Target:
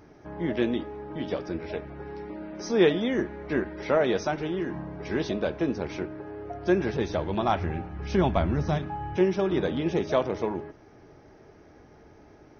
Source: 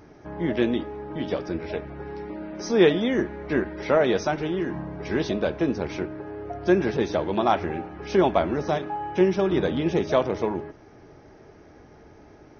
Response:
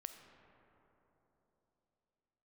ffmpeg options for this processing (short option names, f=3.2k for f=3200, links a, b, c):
-filter_complex "[0:a]asettb=1/sr,asplit=3[a][b][c];[a]atrim=end=6.614[d];[b]atrim=start=6.61:end=9.17,asetpts=PTS-STARTPTS,afade=t=in:d=0.004:c=qsin,afade=t=out:st=2.556:d=0.004:c=qsin,asubboost=boost=9.5:cutoff=160[e];[c]atrim=start=9.166[f];[d][e]acrossfade=d=0.004:c1=hsin:c2=qsin[g];[g][f]acrossfade=d=0.004:c1=qsin:c2=hsin,volume=-3dB"